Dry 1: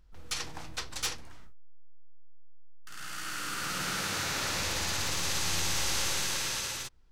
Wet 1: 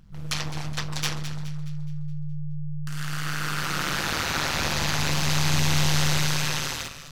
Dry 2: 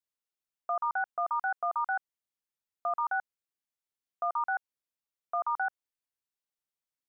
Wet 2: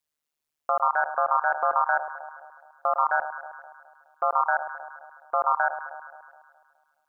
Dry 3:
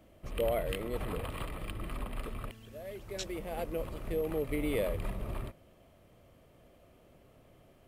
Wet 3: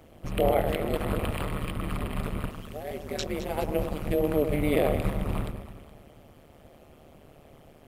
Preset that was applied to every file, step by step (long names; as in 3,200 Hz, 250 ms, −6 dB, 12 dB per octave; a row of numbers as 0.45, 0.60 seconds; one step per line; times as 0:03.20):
dynamic equaliser 8,800 Hz, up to −7 dB, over −50 dBFS, Q 0.79
delay that swaps between a low-pass and a high-pass 105 ms, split 1,300 Hz, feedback 68%, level −8.5 dB
amplitude modulation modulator 150 Hz, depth 100%
normalise the peak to −9 dBFS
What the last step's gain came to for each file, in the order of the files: +11.0, +11.0, +11.0 decibels